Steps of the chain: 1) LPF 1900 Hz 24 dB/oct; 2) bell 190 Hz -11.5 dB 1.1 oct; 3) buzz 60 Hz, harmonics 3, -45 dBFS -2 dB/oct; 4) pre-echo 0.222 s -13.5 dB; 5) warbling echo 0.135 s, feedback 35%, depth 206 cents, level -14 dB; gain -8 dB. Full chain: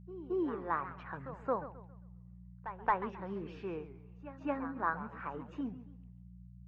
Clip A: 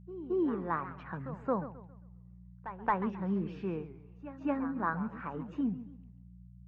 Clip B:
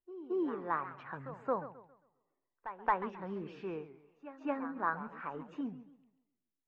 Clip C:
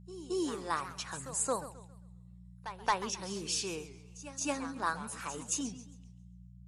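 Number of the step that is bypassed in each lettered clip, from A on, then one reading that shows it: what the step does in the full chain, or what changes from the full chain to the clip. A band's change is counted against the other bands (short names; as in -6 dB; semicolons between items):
2, 125 Hz band +5.5 dB; 3, 125 Hz band -4.0 dB; 1, 2 kHz band +2.0 dB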